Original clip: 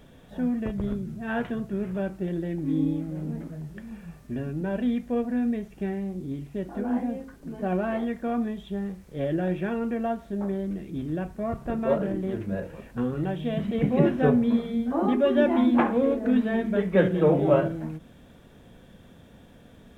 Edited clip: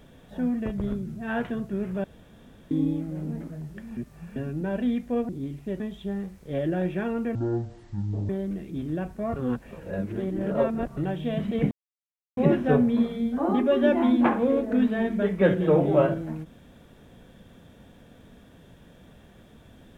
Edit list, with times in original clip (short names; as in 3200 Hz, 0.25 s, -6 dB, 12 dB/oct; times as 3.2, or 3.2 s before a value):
2.04–2.71 room tone
3.97–4.36 reverse
5.29–6.17 cut
6.68–8.46 cut
10.01–10.49 speed 51%
11.56–13.17 reverse
13.91 insert silence 0.66 s